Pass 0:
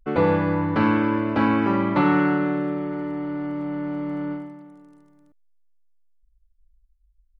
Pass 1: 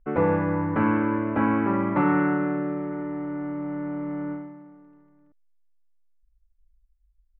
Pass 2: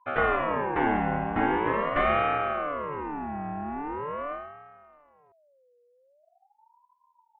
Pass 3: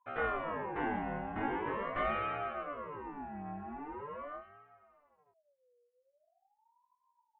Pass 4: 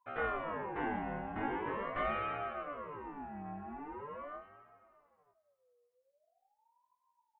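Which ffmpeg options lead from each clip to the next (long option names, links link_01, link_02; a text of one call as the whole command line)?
ffmpeg -i in.wav -af "lowpass=frequency=2200:width=0.5412,lowpass=frequency=2200:width=1.3066,volume=-2.5dB" out.wav
ffmpeg -i in.wav -af "aeval=exprs='val(0)*sin(2*PI*740*n/s+740*0.35/0.43*sin(2*PI*0.43*n/s))':channel_layout=same" out.wav
ffmpeg -i in.wav -af "flanger=delay=17:depth=4.8:speed=0.38,volume=-7.5dB" out.wav
ffmpeg -i in.wav -af "aecho=1:1:319|638|957:0.0668|0.0334|0.0167,volume=-1.5dB" out.wav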